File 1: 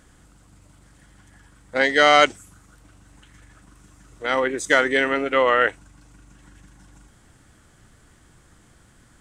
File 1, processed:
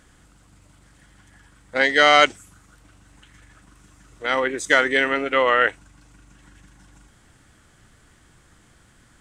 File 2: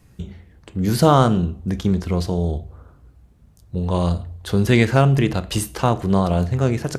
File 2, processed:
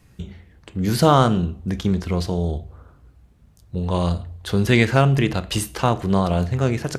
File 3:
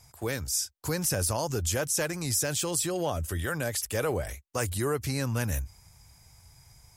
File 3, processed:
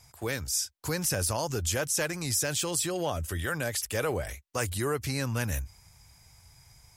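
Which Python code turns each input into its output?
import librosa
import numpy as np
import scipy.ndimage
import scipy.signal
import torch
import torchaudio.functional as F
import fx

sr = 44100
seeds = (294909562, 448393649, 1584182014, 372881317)

y = fx.peak_eq(x, sr, hz=2600.0, db=3.5, octaves=2.3)
y = y * 10.0 ** (-1.5 / 20.0)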